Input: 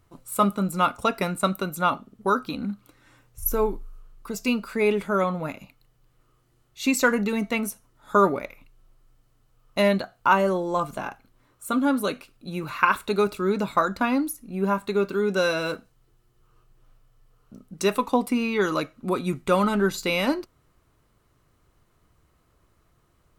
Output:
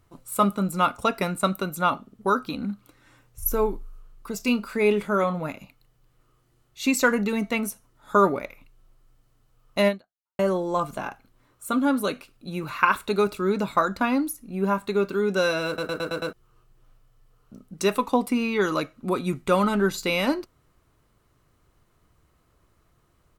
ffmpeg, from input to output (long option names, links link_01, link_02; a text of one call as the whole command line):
ffmpeg -i in.wav -filter_complex "[0:a]asplit=3[link_01][link_02][link_03];[link_01]afade=type=out:start_time=4.39:duration=0.02[link_04];[link_02]asplit=2[link_05][link_06];[link_06]adelay=29,volume=-12dB[link_07];[link_05][link_07]amix=inputs=2:normalize=0,afade=type=in:start_time=4.39:duration=0.02,afade=type=out:start_time=5.38:duration=0.02[link_08];[link_03]afade=type=in:start_time=5.38:duration=0.02[link_09];[link_04][link_08][link_09]amix=inputs=3:normalize=0,asplit=8[link_10][link_11][link_12][link_13][link_14][link_15][link_16][link_17];[link_10]atrim=end=10.39,asetpts=PTS-STARTPTS,afade=type=out:start_time=9.88:duration=0.51:curve=exp[link_18];[link_11]atrim=start=10.39:end=15.782,asetpts=PTS-STARTPTS,afade=type=in:duration=0.004:curve=hsin[link_19];[link_12]atrim=start=15.668:end=15.782[link_20];[link_13]atrim=start=15.668:end=15.782[link_21];[link_14]atrim=start=15.668:end=15.782[link_22];[link_15]atrim=start=15.668:end=15.782[link_23];[link_16]atrim=start=15.668:end=15.782[link_24];[link_17]atrim=start=16.328[link_25];[link_18][link_19]concat=n=2:v=0:a=1[link_26];[link_26][link_20]acrossfade=duration=0.004:curve1=hsin:curve2=hsin[link_27];[link_27][link_21]acrossfade=duration=0.004:curve1=hsin:curve2=hsin[link_28];[link_28][link_22]acrossfade=duration=0.004:curve1=hsin:curve2=hsin[link_29];[link_29][link_23]acrossfade=duration=0.004:curve1=hsin:curve2=hsin[link_30];[link_30][link_24]acrossfade=duration=0.004:curve1=hsin:curve2=hsin[link_31];[link_31][link_25]acrossfade=duration=0.004:curve1=hsin:curve2=hsin" out.wav